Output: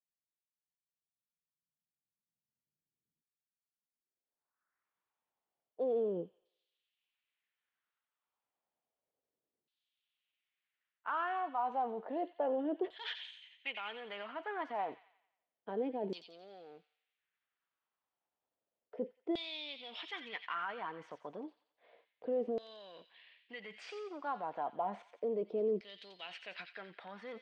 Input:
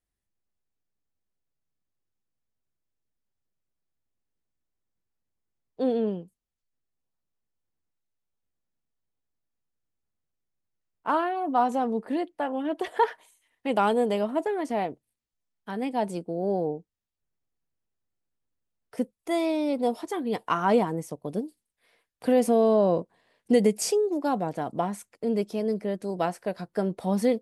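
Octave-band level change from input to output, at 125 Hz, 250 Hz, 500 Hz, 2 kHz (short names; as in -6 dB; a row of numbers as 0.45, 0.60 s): -21.0, -17.0, -13.0, -6.5 dB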